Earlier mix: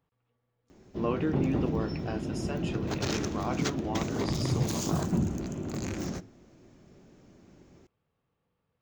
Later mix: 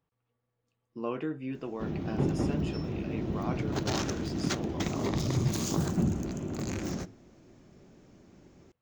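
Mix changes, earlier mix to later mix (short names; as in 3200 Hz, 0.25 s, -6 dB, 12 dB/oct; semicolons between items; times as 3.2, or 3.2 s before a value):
speech -3.5 dB; background: entry +0.85 s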